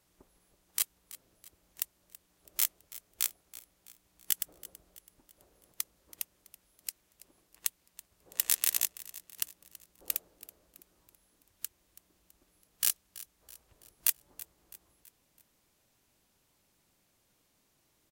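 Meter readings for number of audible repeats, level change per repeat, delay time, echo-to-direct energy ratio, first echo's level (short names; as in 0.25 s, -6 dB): 3, -6.5 dB, 0.329 s, -17.0 dB, -18.0 dB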